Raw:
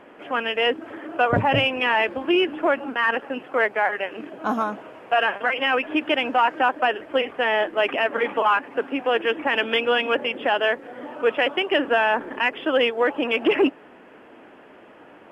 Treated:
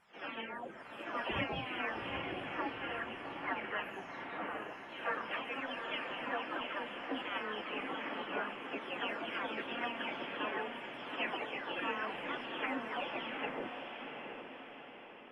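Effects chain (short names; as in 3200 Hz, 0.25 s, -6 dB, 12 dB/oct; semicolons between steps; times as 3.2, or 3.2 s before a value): spectral delay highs early, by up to 0.652 s; gate -40 dBFS, range -8 dB; spectral gate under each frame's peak -10 dB weak; high shelf 3500 Hz -9 dB; on a send: diffused feedback echo 0.779 s, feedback 50%, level -5.5 dB; on the sum: gain -6 dB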